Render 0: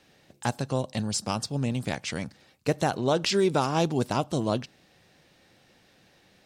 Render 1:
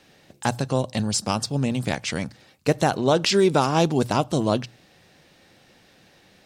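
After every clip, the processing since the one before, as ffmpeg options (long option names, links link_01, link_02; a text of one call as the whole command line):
ffmpeg -i in.wav -af "bandreject=frequency=60:width_type=h:width=6,bandreject=frequency=120:width_type=h:width=6,volume=5dB" out.wav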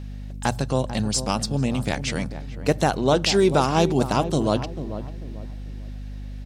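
ffmpeg -i in.wav -filter_complex "[0:a]aeval=exprs='val(0)+0.0224*(sin(2*PI*50*n/s)+sin(2*PI*2*50*n/s)/2+sin(2*PI*3*50*n/s)/3+sin(2*PI*4*50*n/s)/4+sin(2*PI*5*50*n/s)/5)':channel_layout=same,asplit=2[link_01][link_02];[link_02]adelay=443,lowpass=frequency=900:poles=1,volume=-10dB,asplit=2[link_03][link_04];[link_04]adelay=443,lowpass=frequency=900:poles=1,volume=0.37,asplit=2[link_05][link_06];[link_06]adelay=443,lowpass=frequency=900:poles=1,volume=0.37,asplit=2[link_07][link_08];[link_08]adelay=443,lowpass=frequency=900:poles=1,volume=0.37[link_09];[link_03][link_05][link_07][link_09]amix=inputs=4:normalize=0[link_10];[link_01][link_10]amix=inputs=2:normalize=0" out.wav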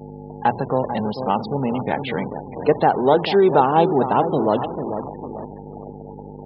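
ffmpeg -i in.wav -af "aeval=exprs='val(0)+0.5*0.0708*sgn(val(0))':channel_layout=same,highpass=170,equalizer=frequency=440:width_type=q:width=4:gain=7,equalizer=frequency=850:width_type=q:width=4:gain=9,equalizer=frequency=2500:width_type=q:width=4:gain=-4,lowpass=frequency=3600:width=0.5412,lowpass=frequency=3600:width=1.3066,afftfilt=real='re*gte(hypot(re,im),0.0447)':imag='im*gte(hypot(re,im),0.0447)':win_size=1024:overlap=0.75,volume=-1dB" out.wav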